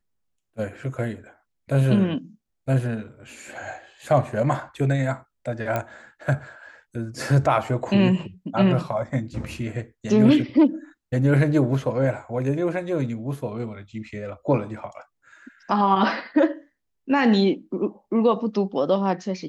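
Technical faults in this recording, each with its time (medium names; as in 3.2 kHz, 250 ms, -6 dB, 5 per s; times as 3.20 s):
5.76 s: pop -12 dBFS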